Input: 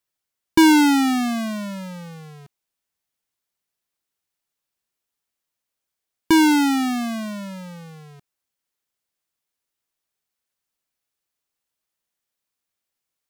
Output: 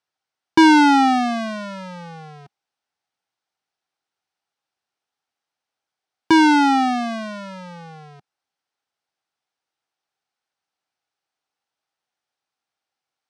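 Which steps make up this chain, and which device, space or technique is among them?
car door speaker (speaker cabinet 110–7600 Hz, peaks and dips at 200 Hz -5 dB, 790 Hz +10 dB, 1400 Hz +5 dB, 7100 Hz -8 dB); gain +1 dB

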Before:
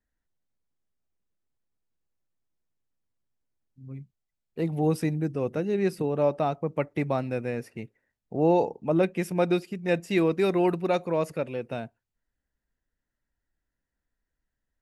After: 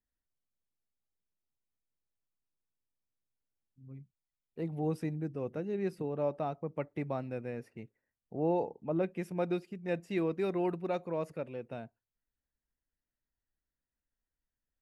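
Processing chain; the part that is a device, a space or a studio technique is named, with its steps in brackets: behind a face mask (high shelf 3000 Hz -7.5 dB); 8.39–9.06 high shelf 5100 Hz -8 dB; gain -8.5 dB

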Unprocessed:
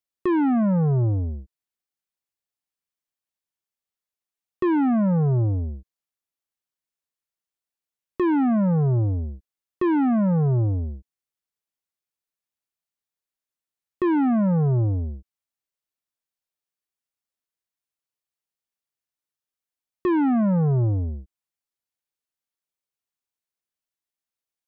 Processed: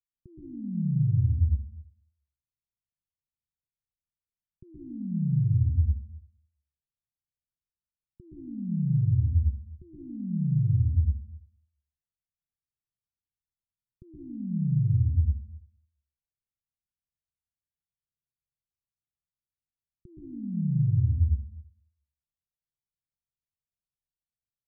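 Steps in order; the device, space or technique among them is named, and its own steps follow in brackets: club heard from the street (limiter -27.5 dBFS, peak gain reduction 9 dB; LPF 160 Hz 24 dB/oct; reverb RT60 0.55 s, pre-delay 0.115 s, DRR -3.5 dB); gain +2 dB

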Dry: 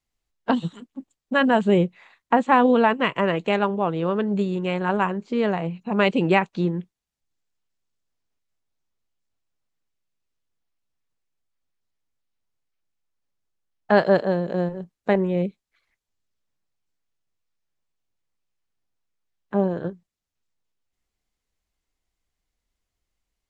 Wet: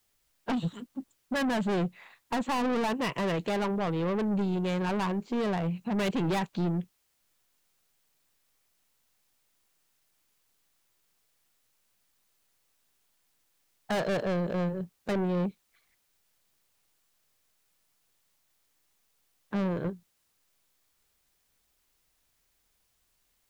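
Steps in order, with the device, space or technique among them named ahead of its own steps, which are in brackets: open-reel tape (soft clip -25.5 dBFS, distortion -5 dB; bell 120 Hz +4 dB 1.17 oct; white noise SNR 40 dB); gain -1 dB

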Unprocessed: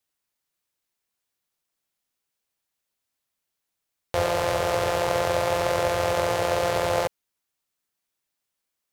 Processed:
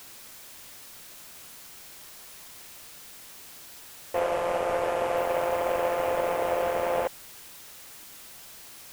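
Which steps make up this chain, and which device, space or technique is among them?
army field radio (BPF 320–3400 Hz; CVSD 16 kbps; white noise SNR 15 dB); 4.19–5.17 LPF 11000 Hz 12 dB/oct

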